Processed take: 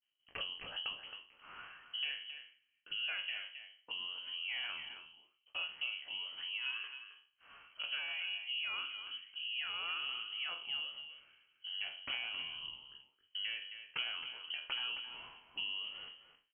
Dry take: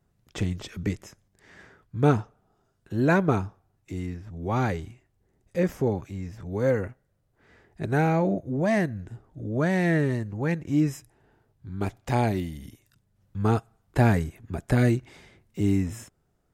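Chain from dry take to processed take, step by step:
peak hold with a decay on every bin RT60 0.31 s
downward expander −57 dBFS
low-shelf EQ 100 Hz −9.5 dB
notch filter 510 Hz, Q 12
downward compressor 5 to 1, threshold −39 dBFS, peak gain reduction 20.5 dB
double-tracking delay 15 ms −12.5 dB
single-tap delay 268 ms −10 dB
voice inversion scrambler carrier 3,100 Hz
level −1 dB

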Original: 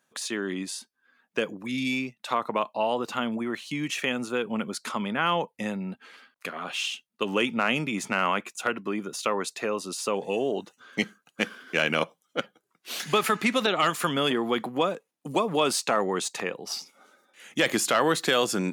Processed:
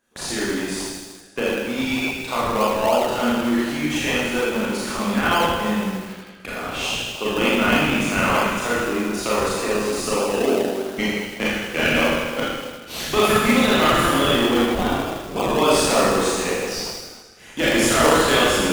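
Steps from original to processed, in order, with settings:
high-pass filter 170 Hz 6 dB per octave
four-comb reverb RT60 1.4 s, combs from 26 ms, DRR −8 dB
0:14.74–0:15.48: ring modulation 310 Hz → 89 Hz
in parallel at −6 dB: sample-and-hold swept by an LFO 32×, swing 60% 3.3 Hz
on the sum: feedback echo at a low word length 80 ms, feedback 80%, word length 5 bits, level −11 dB
level −2.5 dB

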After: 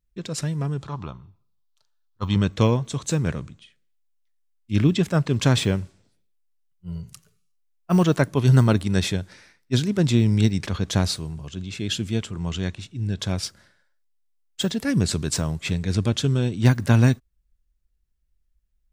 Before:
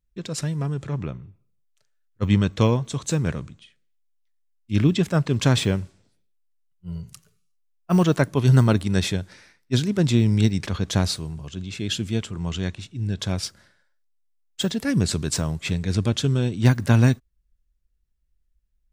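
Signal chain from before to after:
0:00.82–0:02.36: octave-band graphic EQ 125/250/500/1,000/2,000/4,000/8,000 Hz −5/−4/−7/+11/−11/+8/−5 dB

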